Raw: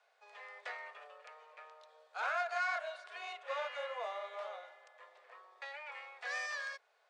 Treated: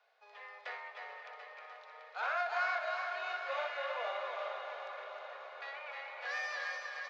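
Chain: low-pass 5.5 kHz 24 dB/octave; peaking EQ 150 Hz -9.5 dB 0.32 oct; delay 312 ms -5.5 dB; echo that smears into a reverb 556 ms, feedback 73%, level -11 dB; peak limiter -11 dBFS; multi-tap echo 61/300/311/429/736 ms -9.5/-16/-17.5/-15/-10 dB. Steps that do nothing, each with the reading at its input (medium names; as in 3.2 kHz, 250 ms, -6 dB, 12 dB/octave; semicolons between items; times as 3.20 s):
peaking EQ 150 Hz: input has nothing below 360 Hz; peak limiter -11 dBFS: peak at its input -24.5 dBFS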